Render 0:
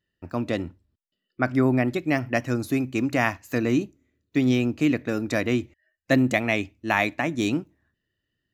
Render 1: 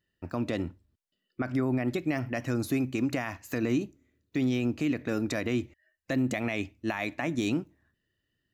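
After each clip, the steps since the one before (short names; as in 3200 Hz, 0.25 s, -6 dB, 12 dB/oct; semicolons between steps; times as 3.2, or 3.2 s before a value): compressor 3:1, threshold -22 dBFS, peak gain reduction 6 dB; limiter -19 dBFS, peak gain reduction 9.5 dB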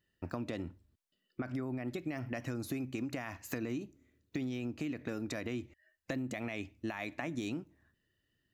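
compressor 6:1, threshold -35 dBFS, peak gain reduction 11.5 dB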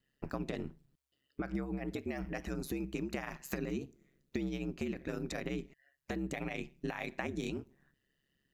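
ring modulator 68 Hz; gain +3 dB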